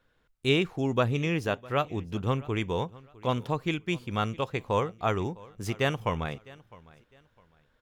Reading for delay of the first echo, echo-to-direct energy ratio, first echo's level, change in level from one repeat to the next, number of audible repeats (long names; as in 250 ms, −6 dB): 656 ms, −21.5 dB, −22.0 dB, −11.0 dB, 2